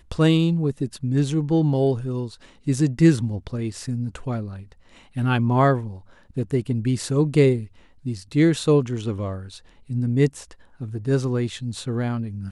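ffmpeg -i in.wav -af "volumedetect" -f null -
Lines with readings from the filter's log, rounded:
mean_volume: -22.5 dB
max_volume: -4.8 dB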